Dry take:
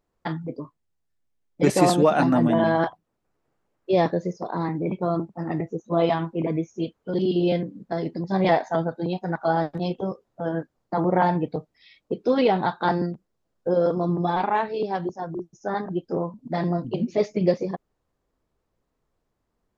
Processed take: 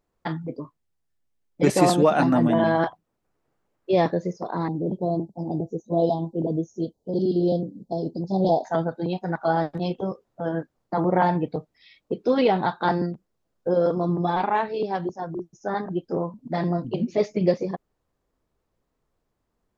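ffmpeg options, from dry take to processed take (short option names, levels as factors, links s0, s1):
-filter_complex "[0:a]asettb=1/sr,asplit=3[s0][s1][s2];[s0]atrim=end=4.684[s3];[s1]atrim=start=4.68:end=8.65,asetpts=PTS-STARTPTS,afade=t=in:d=0.004:c=qsin,afade=t=out:st=3.966:d=0.004:c=qsin,asuperstop=centerf=1800:order=8:qfactor=0.58[s4];[s2]atrim=start=8.646[s5];[s3][s4]acrossfade=d=0.004:c1=hsin:c2=qsin[s6];[s6][s5]acrossfade=d=0.004:c1=qsin:c2=hsin"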